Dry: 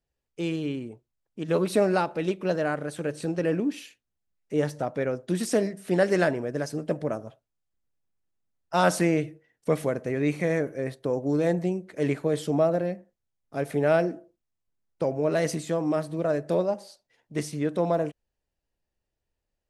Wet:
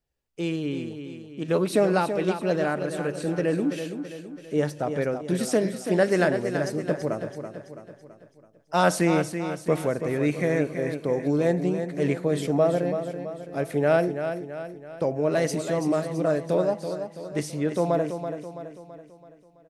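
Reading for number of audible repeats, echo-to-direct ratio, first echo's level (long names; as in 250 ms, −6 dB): 5, −7.5 dB, −8.5 dB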